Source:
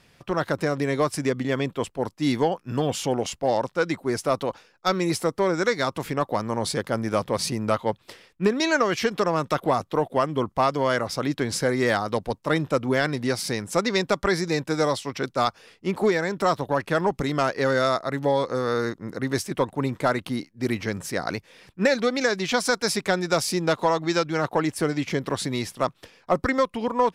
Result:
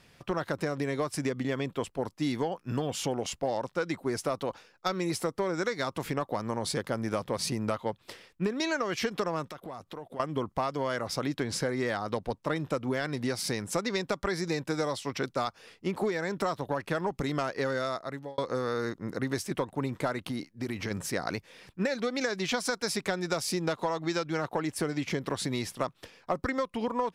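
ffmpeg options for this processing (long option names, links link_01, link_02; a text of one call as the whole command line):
ffmpeg -i in.wav -filter_complex "[0:a]asettb=1/sr,asplit=3[link_01][link_02][link_03];[link_01]atrim=end=9.454[link_04];[link_02]atrim=start=9.45:end=10.2,asetpts=PTS-STARTPTS,afade=type=in:duration=0.004:curve=qsin,afade=type=out:start_time=0.746:duration=0.004:curve=qsin,acompressor=threshold=-39dB:ratio=4:attack=3.2:release=140:knee=1:detection=peak[link_05];[link_03]atrim=start=10.196[link_06];[link_04][link_05]acrossfade=duration=0.004:curve1=hsin:curve2=qsin[link_07];[link_07][link_06]acrossfade=duration=0.004:curve1=qsin:curve2=hsin,asettb=1/sr,asplit=3[link_08][link_09][link_10];[link_08]atrim=end=11.434[link_11];[link_09]atrim=start=11.43:end=12.56,asetpts=PTS-STARTPTS,afade=type=in:duration=0.004:curve=qsin,afade=type=out:start_time=1.126:duration=0.004:curve=qsin,highshelf=frequency=7200:gain=-6[link_12];[link_10]atrim=start=12.556[link_13];[link_11][link_12]acrossfade=duration=0.004:curve1=hsin:curve2=qsin[link_14];[link_14][link_13]acrossfade=duration=0.004:curve1=qsin:curve2=hsin,asplit=3[link_15][link_16][link_17];[link_15]afade=type=out:start_time=20.27:duration=0.02[link_18];[link_16]acompressor=threshold=-27dB:ratio=6:attack=3.2:release=140:knee=1:detection=peak,afade=type=in:start_time=20.27:duration=0.02,afade=type=out:start_time=20.9:duration=0.02[link_19];[link_17]afade=type=in:start_time=20.9:duration=0.02[link_20];[link_18][link_19][link_20]amix=inputs=3:normalize=0,asplit=2[link_21][link_22];[link_21]atrim=end=18.38,asetpts=PTS-STARTPTS,afade=type=out:start_time=17.71:duration=0.67[link_23];[link_22]atrim=start=18.38,asetpts=PTS-STARTPTS,afade=type=in:duration=0.004:curve=hsin[link_24];[link_23][link_24]concat=n=2:v=0:a=1,acompressor=threshold=-25dB:ratio=6,volume=-1.5dB" out.wav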